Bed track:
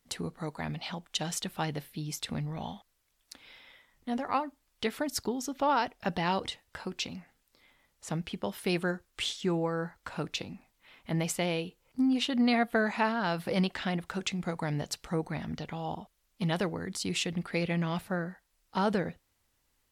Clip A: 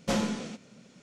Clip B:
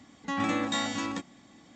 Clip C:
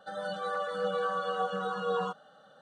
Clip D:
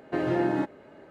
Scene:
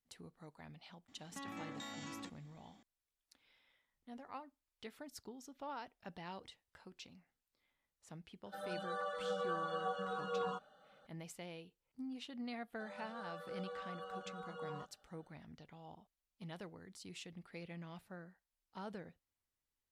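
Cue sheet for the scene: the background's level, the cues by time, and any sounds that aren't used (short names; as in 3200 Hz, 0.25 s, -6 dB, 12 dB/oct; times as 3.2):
bed track -19 dB
1.08 add B -12.5 dB + compressor, threshold -31 dBFS
8.46 add C -8 dB
12.73 add C -16 dB
not used: A, D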